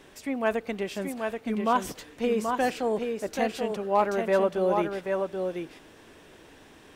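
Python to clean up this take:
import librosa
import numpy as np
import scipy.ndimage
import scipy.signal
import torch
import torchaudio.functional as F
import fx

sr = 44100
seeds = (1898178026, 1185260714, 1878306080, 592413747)

y = fx.fix_declip(x, sr, threshold_db=-13.0)
y = fx.fix_echo_inverse(y, sr, delay_ms=781, level_db=-5.0)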